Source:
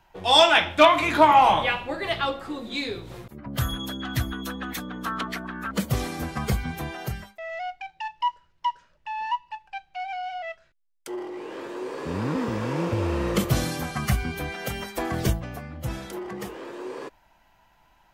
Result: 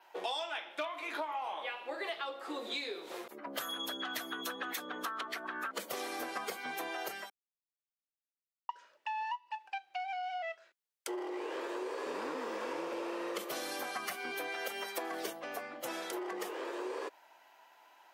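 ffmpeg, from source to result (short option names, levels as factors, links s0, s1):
-filter_complex "[0:a]asplit=3[s0][s1][s2];[s0]atrim=end=7.3,asetpts=PTS-STARTPTS,afade=t=out:st=7.296:d=0.004:c=hsin[s3];[s1]atrim=start=7.3:end=8.69,asetpts=PTS-STARTPTS,volume=0[s4];[s2]atrim=start=8.69,asetpts=PTS-STARTPTS,afade=t=in:d=0.004:c=hsin[s5];[s3][s4][s5]concat=n=3:v=0:a=1,highpass=f=360:w=0.5412,highpass=f=360:w=1.3066,adynamicequalizer=threshold=0.002:dfrequency=7200:dqfactor=3.2:tfrequency=7200:tqfactor=3.2:attack=5:release=100:ratio=0.375:range=2.5:mode=cutabove:tftype=bell,acompressor=threshold=0.0158:ratio=16,volume=1.12"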